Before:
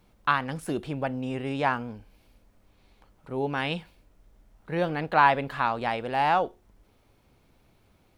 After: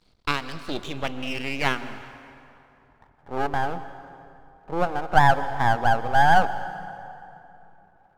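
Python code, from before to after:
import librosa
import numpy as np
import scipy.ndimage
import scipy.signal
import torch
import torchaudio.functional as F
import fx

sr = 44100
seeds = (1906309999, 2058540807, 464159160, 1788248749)

p1 = fx.rider(x, sr, range_db=10, speed_s=0.5)
p2 = x + (p1 * 10.0 ** (1.0 / 20.0))
p3 = fx.filter_sweep_lowpass(p2, sr, from_hz=4500.0, to_hz=780.0, start_s=0.52, end_s=3.29, q=5.8)
p4 = np.maximum(p3, 0.0)
p5 = fx.rev_plate(p4, sr, seeds[0], rt60_s=2.9, hf_ratio=0.65, predelay_ms=105, drr_db=12.5)
y = p5 * 10.0 ** (-6.0 / 20.0)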